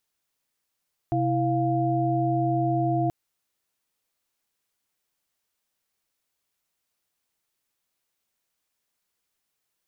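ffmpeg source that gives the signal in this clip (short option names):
-f lavfi -i "aevalsrc='0.0531*(sin(2*PI*130.81*t)+sin(2*PI*329.63*t)+sin(2*PI*698.46*t))':d=1.98:s=44100"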